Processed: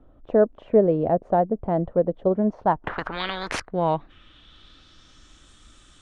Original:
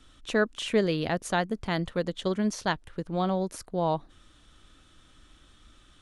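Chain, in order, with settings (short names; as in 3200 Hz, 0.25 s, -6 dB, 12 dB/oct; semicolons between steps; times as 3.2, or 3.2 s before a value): low-pass sweep 650 Hz -> 7900 Hz, 2.37–5.5; 2.84–3.6 spectral compressor 10:1; gain +3.5 dB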